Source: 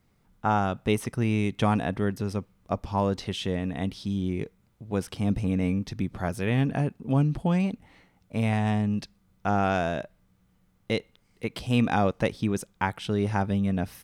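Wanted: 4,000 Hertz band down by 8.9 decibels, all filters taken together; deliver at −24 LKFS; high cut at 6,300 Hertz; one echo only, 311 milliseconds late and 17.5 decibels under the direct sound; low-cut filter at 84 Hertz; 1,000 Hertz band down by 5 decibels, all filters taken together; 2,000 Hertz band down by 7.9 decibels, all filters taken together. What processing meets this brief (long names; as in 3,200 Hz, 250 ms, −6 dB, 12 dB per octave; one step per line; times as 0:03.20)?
high-pass filter 84 Hz
low-pass filter 6,300 Hz
parametric band 1,000 Hz −5.5 dB
parametric band 2,000 Hz −6.5 dB
parametric band 4,000 Hz −8.5 dB
single-tap delay 311 ms −17.5 dB
level +5 dB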